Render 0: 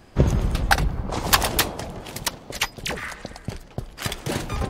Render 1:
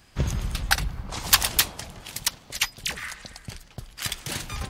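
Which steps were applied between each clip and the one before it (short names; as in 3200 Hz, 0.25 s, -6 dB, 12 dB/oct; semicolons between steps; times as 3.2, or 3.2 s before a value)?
passive tone stack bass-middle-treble 5-5-5; gain +8 dB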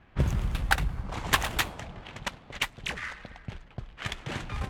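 median filter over 9 samples; low-pass opened by the level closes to 2900 Hz, open at -25 dBFS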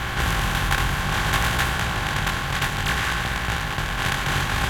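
per-bin compression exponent 0.2; chorus 0.6 Hz, delay 16.5 ms, depth 6 ms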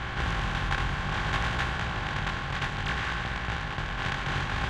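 air absorption 120 m; gain -6 dB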